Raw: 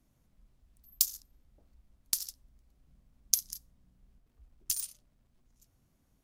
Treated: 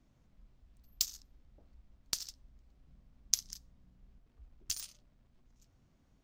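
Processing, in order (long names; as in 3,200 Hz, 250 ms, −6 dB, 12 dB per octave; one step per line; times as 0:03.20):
moving average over 4 samples
level +2.5 dB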